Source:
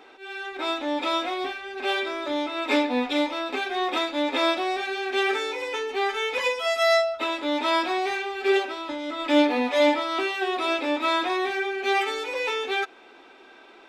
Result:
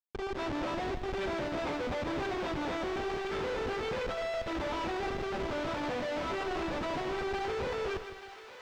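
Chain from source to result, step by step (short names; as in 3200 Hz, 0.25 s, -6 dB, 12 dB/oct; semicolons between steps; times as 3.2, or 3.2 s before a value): HPF 370 Hz 24 dB/oct; low shelf 480 Hz +11 dB; notches 60/120/180/240/300/360/420/480/540/600 Hz; in parallel at 0 dB: compressor 10:1, threshold -30 dBFS, peak gain reduction 17.5 dB; on the sum: plain phase-vocoder stretch 0.62×; vibrato 7 Hz 9.2 cents; Schmitt trigger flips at -28 dBFS; companded quantiser 4-bit; one-sided clip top -24 dBFS, bottom -21.5 dBFS; air absorption 150 m; on a send: thinning echo 0.881 s, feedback 69%, high-pass 1000 Hz, level -10.5 dB; on the sum: lo-fi delay 0.157 s, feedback 35%, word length 9-bit, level -10 dB; gain -9 dB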